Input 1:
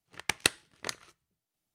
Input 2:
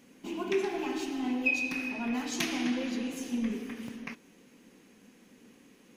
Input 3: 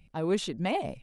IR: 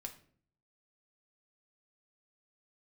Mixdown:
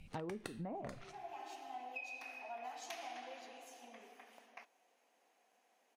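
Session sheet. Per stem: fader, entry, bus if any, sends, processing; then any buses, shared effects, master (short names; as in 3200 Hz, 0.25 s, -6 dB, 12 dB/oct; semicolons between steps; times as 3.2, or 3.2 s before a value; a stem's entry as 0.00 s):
+1.5 dB, 0.00 s, bus A, send -10 dB, dry
-15.0 dB, 0.50 s, no bus, no send, resonant high-pass 710 Hz, resonance Q 6.3; auto duck -12 dB, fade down 1.30 s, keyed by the third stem
+0.5 dB, 0.00 s, bus A, send -9 dB, treble ducked by the level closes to 1000 Hz, closed at -24 dBFS
bus A: 0.0 dB, treble ducked by the level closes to 1600 Hz, closed at -26.5 dBFS; compressor 3:1, threshold -31 dBFS, peak gain reduction 7.5 dB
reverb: on, RT60 0.50 s, pre-delay 4 ms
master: compressor 6:1, threshold -42 dBFS, peak gain reduction 15 dB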